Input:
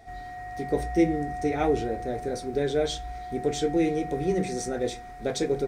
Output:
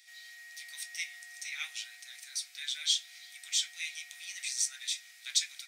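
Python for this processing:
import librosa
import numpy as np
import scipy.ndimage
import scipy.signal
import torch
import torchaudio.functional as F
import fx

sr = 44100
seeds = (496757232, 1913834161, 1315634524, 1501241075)

y = scipy.signal.sosfilt(scipy.signal.cheby2(4, 80, 420.0, 'highpass', fs=sr, output='sos'), x)
y = y * 10.0 ** (7.0 / 20.0)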